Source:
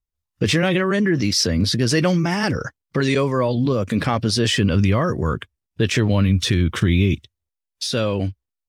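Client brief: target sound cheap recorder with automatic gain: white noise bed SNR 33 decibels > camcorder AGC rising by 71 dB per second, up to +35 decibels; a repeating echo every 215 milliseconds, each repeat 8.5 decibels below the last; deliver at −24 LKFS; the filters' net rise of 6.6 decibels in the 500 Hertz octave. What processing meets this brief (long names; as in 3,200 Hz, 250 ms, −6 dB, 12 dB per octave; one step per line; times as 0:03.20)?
parametric band 500 Hz +8 dB
repeating echo 215 ms, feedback 38%, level −8.5 dB
white noise bed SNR 33 dB
camcorder AGC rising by 71 dB per second, up to +35 dB
level −8 dB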